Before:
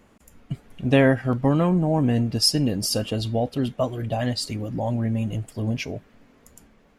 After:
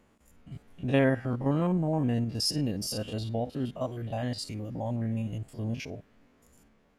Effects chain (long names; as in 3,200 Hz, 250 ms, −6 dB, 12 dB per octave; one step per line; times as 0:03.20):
spectrum averaged block by block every 50 ms
level −6.5 dB